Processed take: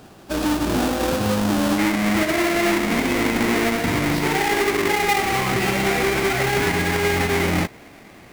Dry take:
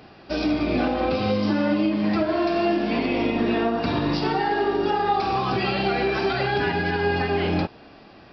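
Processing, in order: square wave that keeps the level; peaking EQ 2.1 kHz -4.5 dB 0.37 oct, from 1.78 s +10.5 dB; trim -2.5 dB

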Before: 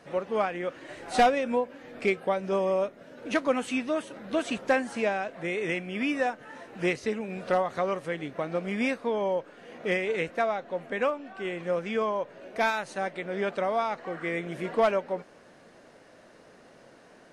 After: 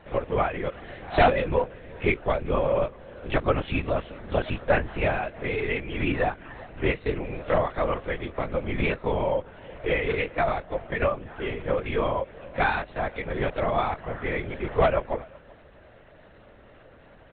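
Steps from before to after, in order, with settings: LPC vocoder at 8 kHz whisper; echo from a far wall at 65 m, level -24 dB; trim +2.5 dB

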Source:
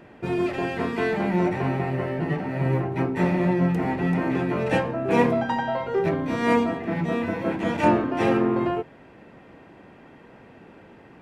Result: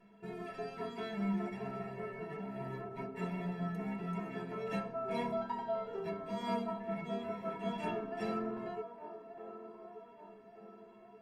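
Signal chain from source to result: flange 0.24 Hz, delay 5.9 ms, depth 3.8 ms, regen -50%; vibrato 1.3 Hz 14 cents; inharmonic resonator 200 Hz, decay 0.26 s, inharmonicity 0.03; on a send: feedback echo behind a band-pass 1178 ms, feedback 43%, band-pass 630 Hz, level -9 dB; on the sum: trim +2.5 dB

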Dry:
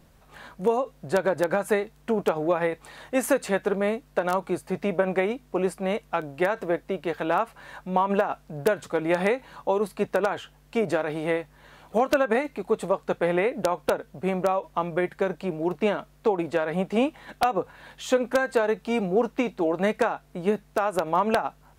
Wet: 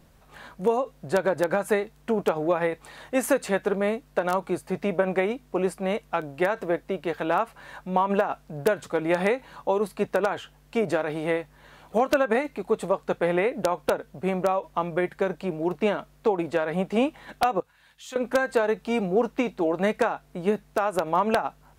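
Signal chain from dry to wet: 17.60–18.16 s: amplifier tone stack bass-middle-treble 5-5-5

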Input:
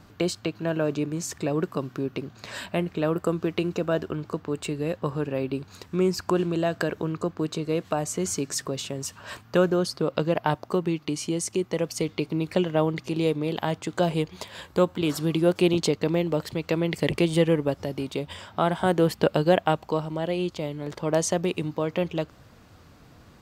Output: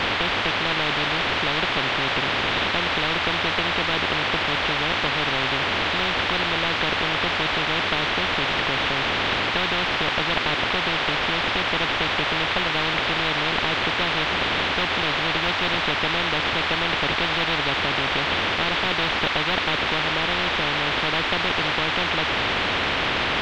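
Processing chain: CVSD coder 16 kbps; band noise 240–2200 Hz -38 dBFS; spectrum-flattening compressor 10:1; trim +1.5 dB

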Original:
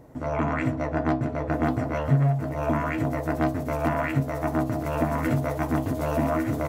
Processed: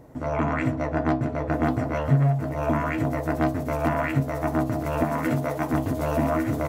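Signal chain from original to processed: 5.03–5.74 s: high-pass 130 Hz 12 dB/octave; trim +1 dB

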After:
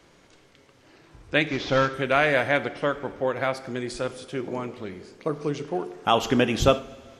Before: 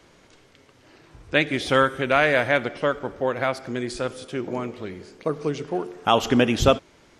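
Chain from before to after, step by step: 1.48–1.94 s: CVSD coder 32 kbps; two-slope reverb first 0.51 s, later 3 s, from -16 dB, DRR 13 dB; trim -2 dB

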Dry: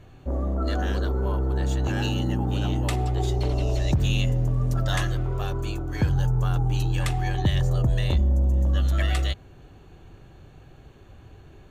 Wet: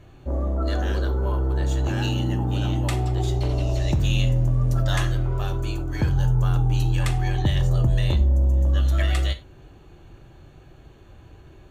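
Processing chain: gated-style reverb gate 120 ms falling, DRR 7.5 dB

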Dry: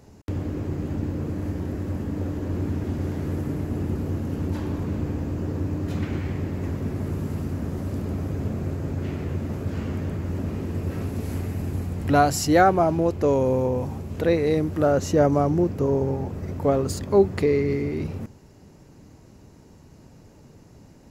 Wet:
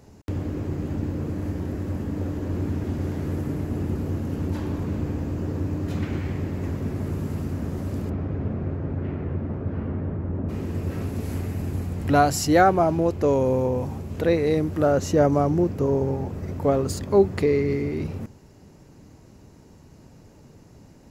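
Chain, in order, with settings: 8.09–10.48 s: low-pass 2.5 kHz -> 1.2 kHz 12 dB/octave

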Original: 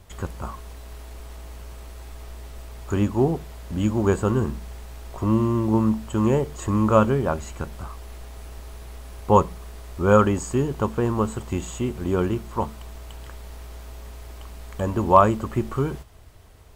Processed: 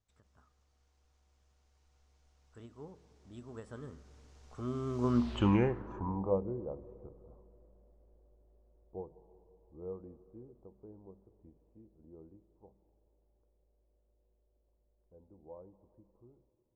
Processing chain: Doppler pass-by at 5.36 s, 42 m/s, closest 6.5 m; reverberation RT60 2.8 s, pre-delay 118 ms, DRR 17.5 dB; low-pass sweep 6.3 kHz -> 520 Hz, 5.04–6.41 s; endings held to a fixed fall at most 210 dB/s; trim -3.5 dB

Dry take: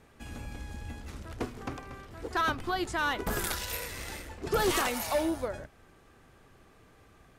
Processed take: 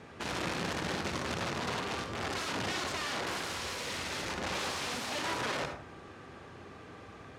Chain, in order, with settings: in parallel at -0.5 dB: compressor with a negative ratio -41 dBFS, ratio -1; on the sum: peak limiter -23 dBFS, peak gain reduction 6.5 dB; integer overflow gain 29.5 dB; band-pass 110–5600 Hz; reverberation RT60 0.50 s, pre-delay 52 ms, DRR 4.5 dB

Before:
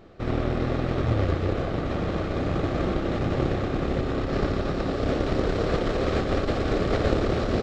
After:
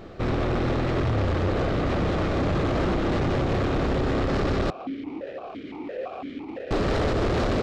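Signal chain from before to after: peak limiter -15 dBFS, peak gain reduction 7 dB; saturation -28.5 dBFS, distortion -8 dB; 4.70–6.71 s: stepped vowel filter 5.9 Hz; trim +8 dB

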